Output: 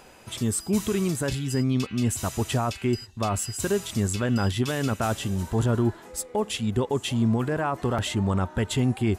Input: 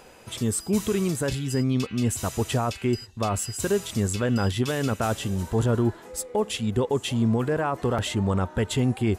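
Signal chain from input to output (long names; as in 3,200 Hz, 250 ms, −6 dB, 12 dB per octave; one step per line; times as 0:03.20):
parametric band 480 Hz −5 dB 0.31 octaves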